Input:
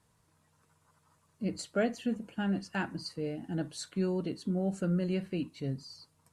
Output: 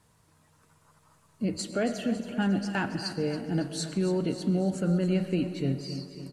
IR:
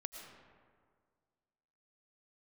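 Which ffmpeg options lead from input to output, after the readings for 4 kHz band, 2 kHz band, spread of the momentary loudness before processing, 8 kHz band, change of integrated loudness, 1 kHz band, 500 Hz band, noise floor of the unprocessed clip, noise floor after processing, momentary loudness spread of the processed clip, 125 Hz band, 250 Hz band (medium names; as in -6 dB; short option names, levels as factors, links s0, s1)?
+6.5 dB, +4.5 dB, 7 LU, +6.5 dB, +5.0 dB, +4.5 dB, +4.5 dB, -71 dBFS, -64 dBFS, 5 LU, +5.5 dB, +5.0 dB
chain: -filter_complex "[0:a]alimiter=level_in=1.12:limit=0.0631:level=0:latency=1,volume=0.891,aecho=1:1:276|552|828|1104|1380|1656:0.251|0.146|0.0845|0.049|0.0284|0.0165,asplit=2[s0][s1];[1:a]atrim=start_sample=2205[s2];[s1][s2]afir=irnorm=-1:irlink=0,volume=1.12[s3];[s0][s3]amix=inputs=2:normalize=0,volume=1.19"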